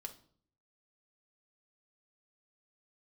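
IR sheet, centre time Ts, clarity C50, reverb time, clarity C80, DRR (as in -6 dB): 8 ms, 13.5 dB, no single decay rate, 19.0 dB, 3.0 dB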